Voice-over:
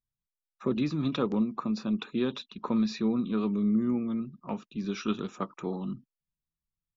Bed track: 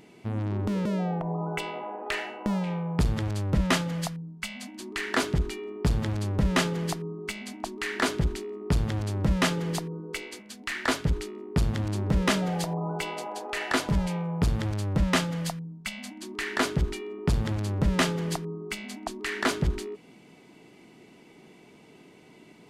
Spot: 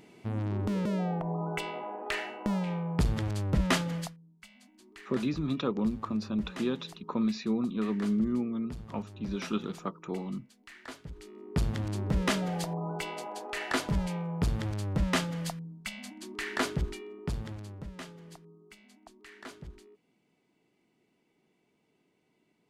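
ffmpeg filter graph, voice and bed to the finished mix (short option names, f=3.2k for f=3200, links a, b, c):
-filter_complex "[0:a]adelay=4450,volume=-2dB[a];[1:a]volume=12dB,afade=t=out:st=3.95:d=0.21:silence=0.158489,afade=t=in:st=11.15:d=0.41:silence=0.188365,afade=t=out:st=16.6:d=1.32:silence=0.158489[b];[a][b]amix=inputs=2:normalize=0"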